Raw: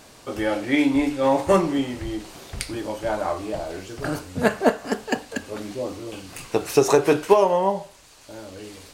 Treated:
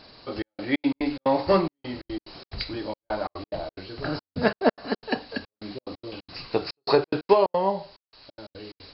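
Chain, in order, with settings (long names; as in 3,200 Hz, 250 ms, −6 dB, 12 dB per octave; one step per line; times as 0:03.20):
hearing-aid frequency compression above 3,800 Hz 4 to 1
gate pattern "xxxxx..xx.x.xx." 179 BPM −60 dB
level −2.5 dB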